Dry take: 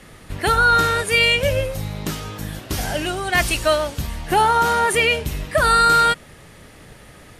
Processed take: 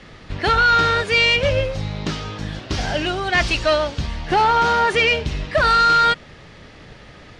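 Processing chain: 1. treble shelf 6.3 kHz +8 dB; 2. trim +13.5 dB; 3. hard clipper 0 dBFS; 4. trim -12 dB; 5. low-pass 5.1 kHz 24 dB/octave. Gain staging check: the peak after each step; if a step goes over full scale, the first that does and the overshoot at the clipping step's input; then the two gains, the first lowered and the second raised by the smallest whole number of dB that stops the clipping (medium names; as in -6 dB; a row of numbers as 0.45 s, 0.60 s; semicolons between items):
-5.0 dBFS, +8.5 dBFS, 0.0 dBFS, -12.0 dBFS, -10.0 dBFS; step 2, 8.5 dB; step 2 +4.5 dB, step 4 -3 dB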